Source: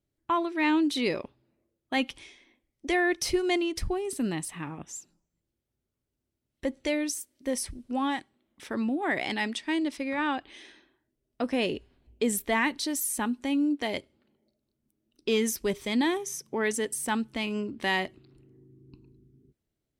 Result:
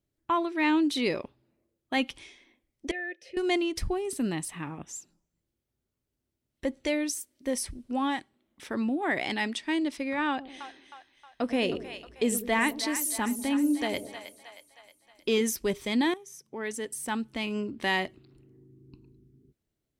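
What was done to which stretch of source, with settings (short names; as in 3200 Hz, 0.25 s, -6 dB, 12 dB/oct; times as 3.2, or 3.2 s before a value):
2.91–3.37 vowel filter e
10.29–15.41 split-band echo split 630 Hz, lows 97 ms, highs 0.314 s, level -10 dB
16.14–17.63 fade in, from -15 dB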